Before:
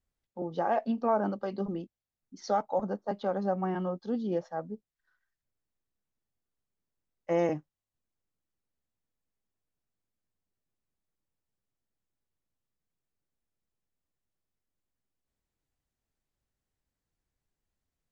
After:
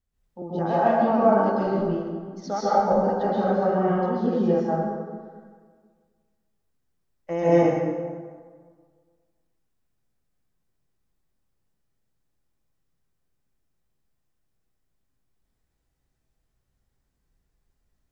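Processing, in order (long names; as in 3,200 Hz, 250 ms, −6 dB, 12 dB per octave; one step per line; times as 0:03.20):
low-shelf EQ 160 Hz +5.5 dB
dense smooth reverb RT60 1.7 s, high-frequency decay 0.6×, pre-delay 115 ms, DRR −9.5 dB
level −1.5 dB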